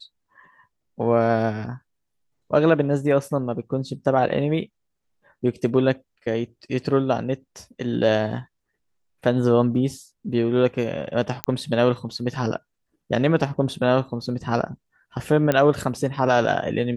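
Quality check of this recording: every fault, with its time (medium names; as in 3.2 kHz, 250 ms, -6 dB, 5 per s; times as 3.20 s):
11.44 s: pop -6 dBFS
15.52 s: pop -8 dBFS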